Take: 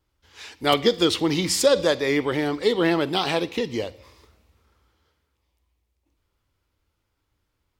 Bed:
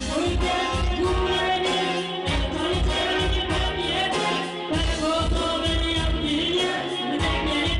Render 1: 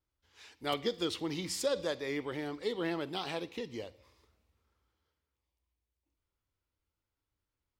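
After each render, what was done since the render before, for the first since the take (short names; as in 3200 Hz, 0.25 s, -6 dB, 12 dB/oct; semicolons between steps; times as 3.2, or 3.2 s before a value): gain -14 dB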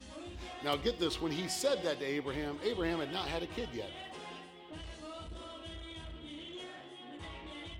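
add bed -23 dB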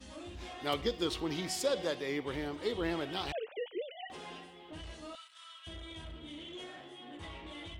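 3.32–4.1 sine-wave speech; 5.15–5.67 HPF 1300 Hz 24 dB/oct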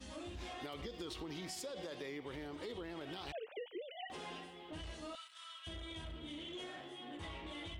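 limiter -30 dBFS, peak gain reduction 11 dB; compressor, threshold -42 dBFS, peak gain reduction 8 dB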